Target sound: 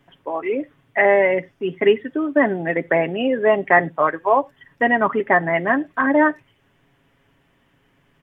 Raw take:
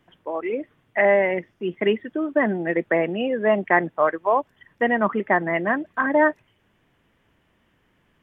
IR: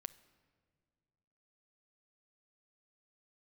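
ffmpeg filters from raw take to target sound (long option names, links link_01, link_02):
-filter_complex "[0:a]aecho=1:1:7.3:0.5,asplit=2[link_01][link_02];[1:a]atrim=start_sample=2205,atrim=end_sample=4410[link_03];[link_02][link_03]afir=irnorm=-1:irlink=0,volume=5dB[link_04];[link_01][link_04]amix=inputs=2:normalize=0,volume=-3.5dB"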